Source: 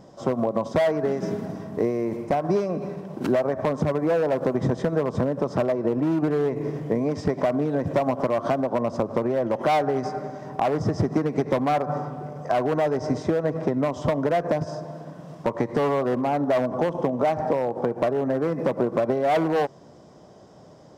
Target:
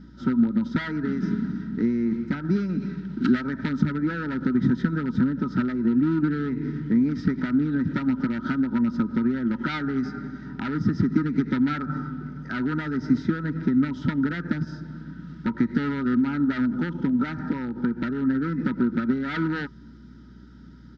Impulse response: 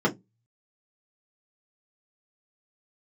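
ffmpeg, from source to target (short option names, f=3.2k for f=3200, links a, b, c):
-filter_complex "[0:a]firequalizer=gain_entry='entry(110,0);entry(230,13);entry(480,-15);entry(710,-27);entry(1100,13);entry(2500,-2);entry(3900,5);entry(9300,-26)':delay=0.05:min_phase=1,aeval=exprs='val(0)+0.00562*(sin(2*PI*60*n/s)+sin(2*PI*2*60*n/s)/2+sin(2*PI*3*60*n/s)/3+sin(2*PI*4*60*n/s)/4+sin(2*PI*5*60*n/s)/5)':c=same,asuperstop=centerf=1100:order=20:qfactor=4.2,asplit=3[a][b][c];[a]afade=t=out:st=2.68:d=0.02[d];[b]adynamicequalizer=threshold=0.00891:dfrequency=2000:dqfactor=0.7:tfrequency=2000:tqfactor=0.7:attack=5:release=100:ratio=0.375:range=2.5:mode=boostabove:tftype=highshelf,afade=t=in:st=2.68:d=0.02,afade=t=out:st=3.8:d=0.02[e];[c]afade=t=in:st=3.8:d=0.02[f];[d][e][f]amix=inputs=3:normalize=0,volume=-3.5dB"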